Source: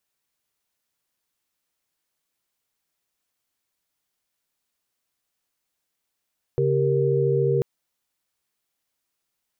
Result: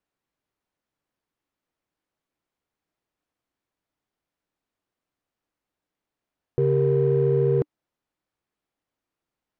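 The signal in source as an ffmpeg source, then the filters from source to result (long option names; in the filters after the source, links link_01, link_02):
-f lavfi -i "aevalsrc='0.075*(sin(2*PI*138.59*t)+sin(2*PI*392*t)+sin(2*PI*466.16*t))':duration=1.04:sample_rate=44100"
-filter_complex "[0:a]lowpass=frequency=1000:poles=1,equalizer=frequency=300:width_type=o:width=0.29:gain=4,asplit=2[link_01][link_02];[link_02]asoftclip=type=tanh:threshold=-30dB,volume=-8dB[link_03];[link_01][link_03]amix=inputs=2:normalize=0"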